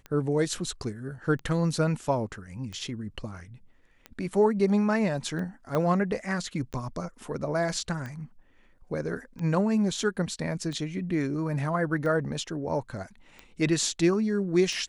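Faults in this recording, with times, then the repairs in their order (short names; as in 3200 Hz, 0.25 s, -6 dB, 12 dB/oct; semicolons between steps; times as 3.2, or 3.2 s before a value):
tick 45 rpm -25 dBFS
5.75 pop -16 dBFS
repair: de-click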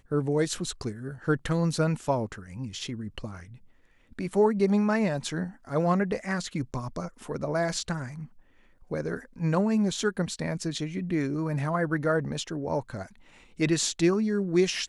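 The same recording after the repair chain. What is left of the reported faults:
5.75 pop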